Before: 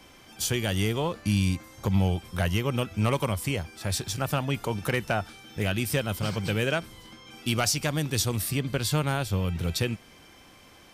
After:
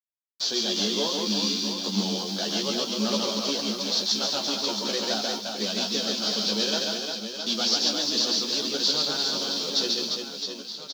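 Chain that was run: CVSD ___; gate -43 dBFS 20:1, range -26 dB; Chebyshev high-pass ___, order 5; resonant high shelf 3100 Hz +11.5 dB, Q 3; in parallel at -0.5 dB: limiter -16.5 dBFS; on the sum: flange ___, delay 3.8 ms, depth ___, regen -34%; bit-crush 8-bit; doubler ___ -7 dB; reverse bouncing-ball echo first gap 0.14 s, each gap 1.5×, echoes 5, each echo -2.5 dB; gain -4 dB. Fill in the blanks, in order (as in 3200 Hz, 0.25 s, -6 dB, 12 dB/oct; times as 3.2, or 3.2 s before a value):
32 kbps, 200 Hz, 0.34 Hz, 10 ms, 14 ms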